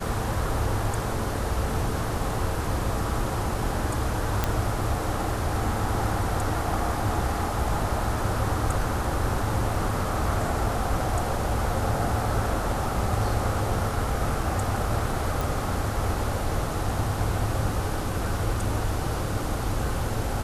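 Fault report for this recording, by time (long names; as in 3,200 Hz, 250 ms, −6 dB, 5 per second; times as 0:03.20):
0:04.44: click −8 dBFS
0:15.41: click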